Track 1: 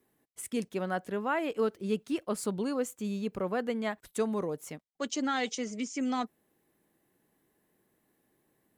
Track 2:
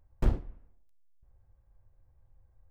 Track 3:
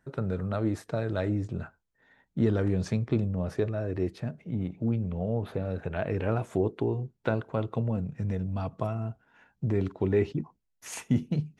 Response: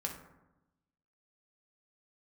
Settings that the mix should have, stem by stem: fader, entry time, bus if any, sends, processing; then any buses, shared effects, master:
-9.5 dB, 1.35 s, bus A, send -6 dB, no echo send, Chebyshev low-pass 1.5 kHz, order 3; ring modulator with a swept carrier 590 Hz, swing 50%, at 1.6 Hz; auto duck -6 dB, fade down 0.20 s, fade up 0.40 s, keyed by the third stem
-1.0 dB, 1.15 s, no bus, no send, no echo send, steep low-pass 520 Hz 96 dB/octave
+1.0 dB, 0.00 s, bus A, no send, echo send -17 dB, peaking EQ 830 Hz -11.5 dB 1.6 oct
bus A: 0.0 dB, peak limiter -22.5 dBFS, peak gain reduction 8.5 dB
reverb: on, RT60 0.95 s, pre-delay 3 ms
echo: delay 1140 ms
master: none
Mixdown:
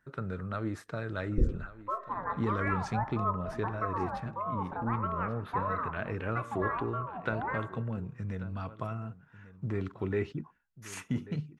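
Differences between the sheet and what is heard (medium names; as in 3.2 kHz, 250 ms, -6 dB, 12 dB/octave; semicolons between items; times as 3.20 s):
stem 3 +1.0 dB -> -6.0 dB; master: extra peaking EQ 1.2 kHz +15 dB 1.7 oct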